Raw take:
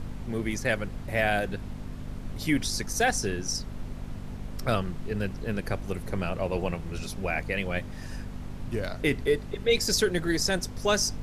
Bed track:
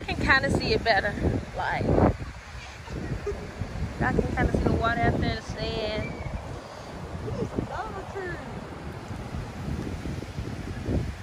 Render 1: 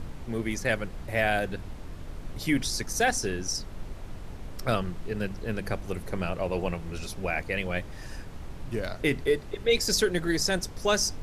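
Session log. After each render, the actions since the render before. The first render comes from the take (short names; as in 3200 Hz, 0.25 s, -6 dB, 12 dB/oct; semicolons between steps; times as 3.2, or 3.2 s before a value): de-hum 50 Hz, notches 5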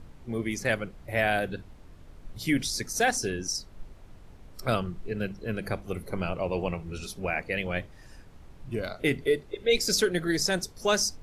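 noise print and reduce 10 dB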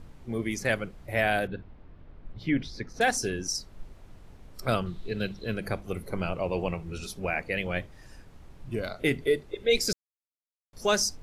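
1.47–3.01 air absorption 310 m; 4.86–5.54 bell 3800 Hz +15 dB 0.47 oct; 9.93–10.73 mute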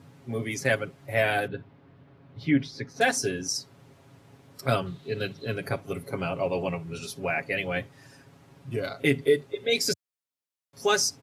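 HPF 91 Hz 24 dB/oct; comb 7.3 ms, depth 73%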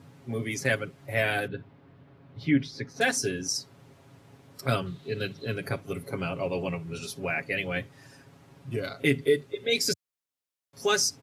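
dynamic EQ 750 Hz, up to -5 dB, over -40 dBFS, Q 1.3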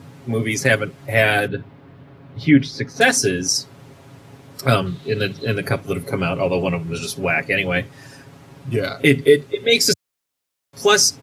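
gain +10.5 dB; limiter -1 dBFS, peak gain reduction 2 dB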